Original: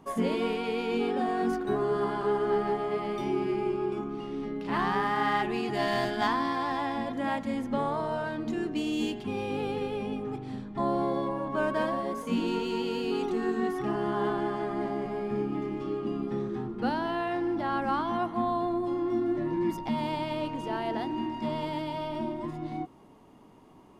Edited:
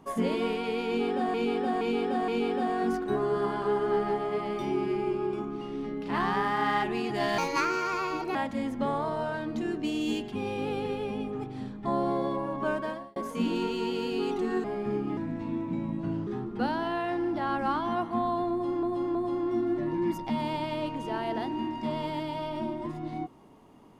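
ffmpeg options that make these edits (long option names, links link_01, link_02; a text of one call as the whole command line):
ffmpeg -i in.wav -filter_complex "[0:a]asplit=12[link_01][link_02][link_03][link_04][link_05][link_06][link_07][link_08][link_09][link_10][link_11][link_12];[link_01]atrim=end=1.342[link_13];[link_02]atrim=start=0.868:end=1.342[link_14];[link_03]atrim=start=0.868:end=1.342[link_15];[link_04]atrim=start=0.868:end=5.974[link_16];[link_05]atrim=start=5.97:end=7.27,asetpts=PTS-STARTPTS,asetrate=59094,aresample=44100[link_17];[link_06]atrim=start=7.266:end=12.08,asetpts=PTS-STARTPTS,afade=type=out:start_time=4.294:duration=0.52[link_18];[link_07]atrim=start=12.08:end=13.562,asetpts=PTS-STARTPTS,afade=type=in:duration=0.004:curve=hsin[link_19];[link_08]atrim=start=15.088:end=15.624[link_20];[link_09]atrim=start=15.62:end=16.5,asetpts=PTS-STARTPTS,asetrate=35280,aresample=44100[link_21];[link_10]atrim=start=16.496:end=19.062[link_22];[link_11]atrim=start=18.738:end=19.062[link_23];[link_12]atrim=start=18.738[link_24];[link_13][link_14]acrossfade=duration=0.004:curve1=hsin:curve2=hsin[link_25];[link_25][link_15]acrossfade=duration=0.004:curve1=hsin:curve2=hsin[link_26];[link_26][link_16]acrossfade=duration=0.004:curve1=hsin:curve2=hsin[link_27];[link_27][link_17]acrossfade=duration=0.004:curve1=hsin:curve2=hsin[link_28];[link_18][link_19]concat=n=2:v=0:a=1[link_29];[link_28][link_29]acrossfade=duration=0.004:curve1=hsin:curve2=hsin[link_30];[link_30][link_20]acrossfade=duration=0.004:curve1=hsin:curve2=hsin[link_31];[link_31][link_21]acrossfade=duration=0.004:curve1=hsin:curve2=hsin[link_32];[link_32][link_22]acrossfade=duration=0.004:curve1=hsin:curve2=hsin[link_33];[link_33][link_23]acrossfade=duration=0.004:curve1=hsin:curve2=hsin[link_34];[link_34][link_24]acrossfade=duration=0.004:curve1=hsin:curve2=hsin" out.wav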